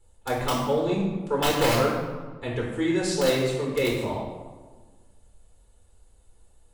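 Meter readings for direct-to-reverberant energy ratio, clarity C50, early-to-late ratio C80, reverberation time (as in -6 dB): -4.0 dB, 2.5 dB, 4.5 dB, 1.4 s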